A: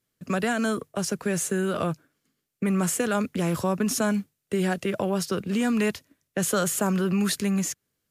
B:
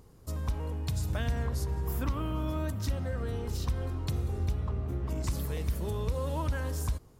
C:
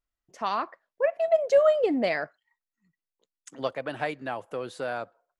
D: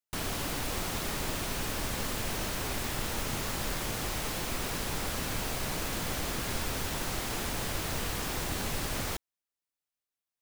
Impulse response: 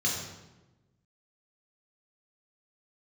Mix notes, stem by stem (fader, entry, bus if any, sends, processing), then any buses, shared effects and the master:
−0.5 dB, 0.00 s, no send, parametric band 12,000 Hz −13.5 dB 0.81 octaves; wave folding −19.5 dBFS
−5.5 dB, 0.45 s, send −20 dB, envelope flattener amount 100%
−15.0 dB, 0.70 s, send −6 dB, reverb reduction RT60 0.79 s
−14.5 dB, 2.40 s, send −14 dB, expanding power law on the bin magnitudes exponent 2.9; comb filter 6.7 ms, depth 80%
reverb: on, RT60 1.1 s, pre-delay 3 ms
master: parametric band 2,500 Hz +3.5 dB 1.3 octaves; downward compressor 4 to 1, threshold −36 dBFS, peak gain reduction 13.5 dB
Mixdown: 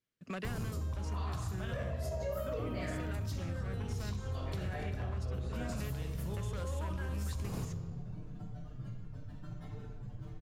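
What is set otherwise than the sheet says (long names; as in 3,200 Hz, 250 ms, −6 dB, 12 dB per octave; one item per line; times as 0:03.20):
stem A −0.5 dB → −12.0 dB
reverb return +7.5 dB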